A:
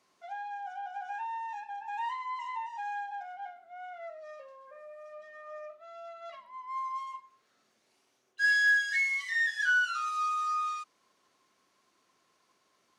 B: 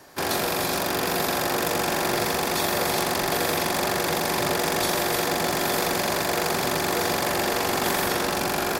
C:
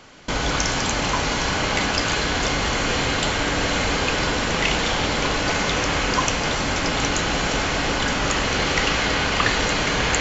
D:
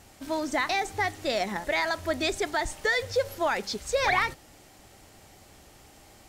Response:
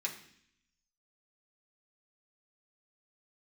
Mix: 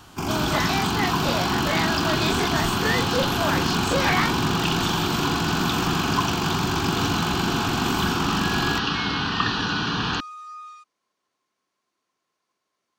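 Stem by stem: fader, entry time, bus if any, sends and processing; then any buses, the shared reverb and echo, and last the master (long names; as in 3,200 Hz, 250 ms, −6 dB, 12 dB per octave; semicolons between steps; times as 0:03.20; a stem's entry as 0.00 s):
−8.0 dB, 0.00 s, no send, no processing
−2.5 dB, 0.00 s, no send, low-shelf EQ 480 Hz +11.5 dB; phaser with its sweep stopped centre 2,700 Hz, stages 8
−1.5 dB, 0.00 s, no send, high-pass filter 150 Hz 12 dB per octave; low-shelf EQ 320 Hz +7.5 dB; phaser with its sweep stopped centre 2,100 Hz, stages 6
−4.0 dB, 0.00 s, no send, every bin's largest magnitude spread in time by 60 ms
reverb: not used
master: no processing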